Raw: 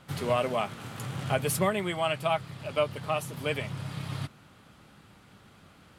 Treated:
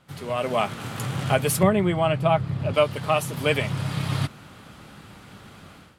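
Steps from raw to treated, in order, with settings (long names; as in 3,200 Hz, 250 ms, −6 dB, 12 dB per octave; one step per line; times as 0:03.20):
0:01.63–0:02.74: spectral tilt −3 dB per octave
automatic gain control gain up to 14.5 dB
level −4.5 dB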